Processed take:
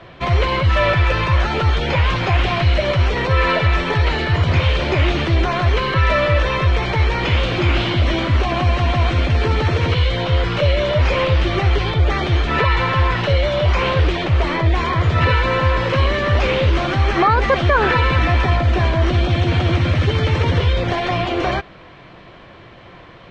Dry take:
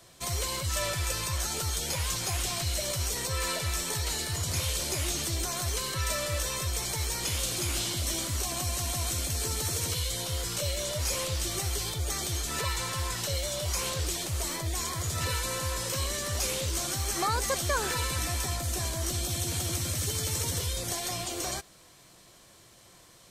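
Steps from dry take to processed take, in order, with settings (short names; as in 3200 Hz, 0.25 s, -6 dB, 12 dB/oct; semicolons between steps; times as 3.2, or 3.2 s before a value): LPF 2800 Hz 24 dB/oct; maximiser +22.5 dB; gain -5 dB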